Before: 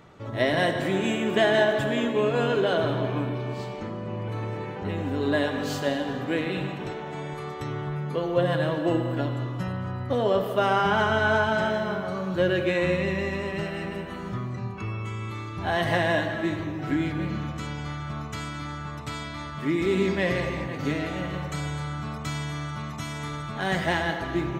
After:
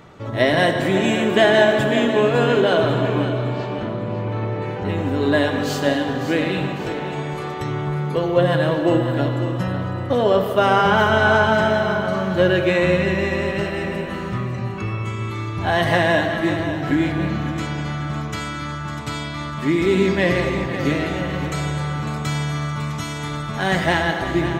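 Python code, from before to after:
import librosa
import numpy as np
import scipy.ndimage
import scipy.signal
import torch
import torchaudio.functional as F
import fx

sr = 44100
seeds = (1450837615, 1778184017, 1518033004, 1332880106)

p1 = fx.air_absorb(x, sr, metres=140.0, at=(3.25, 4.62))
p2 = p1 + fx.echo_feedback(p1, sr, ms=552, feedback_pct=41, wet_db=-11, dry=0)
y = F.gain(torch.from_numpy(p2), 6.5).numpy()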